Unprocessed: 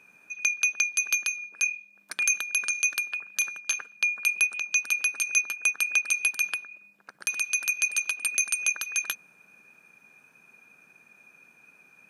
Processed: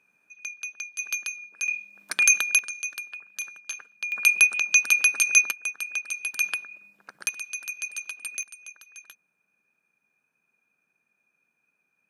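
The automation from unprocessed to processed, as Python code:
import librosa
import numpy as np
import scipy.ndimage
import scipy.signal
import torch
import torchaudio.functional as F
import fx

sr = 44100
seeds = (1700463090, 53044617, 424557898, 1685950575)

y = fx.gain(x, sr, db=fx.steps((0.0, -11.0), (0.99, -4.0), (1.68, 6.0), (2.59, -7.0), (4.12, 6.0), (5.51, -6.0), (6.34, 1.5), (7.29, -7.5), (8.43, -18.0)))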